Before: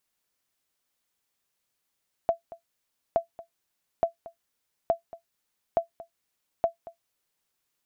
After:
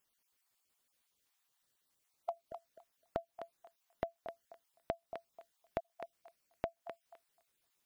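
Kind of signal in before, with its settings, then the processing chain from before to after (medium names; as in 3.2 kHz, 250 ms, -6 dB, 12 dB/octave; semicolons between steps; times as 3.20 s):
sonar ping 674 Hz, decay 0.12 s, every 0.87 s, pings 6, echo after 0.23 s, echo -19 dB -13.5 dBFS
random holes in the spectrogram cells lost 31%; compression, threshold -36 dBFS; on a send: thinning echo 256 ms, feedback 20%, high-pass 700 Hz, level -5.5 dB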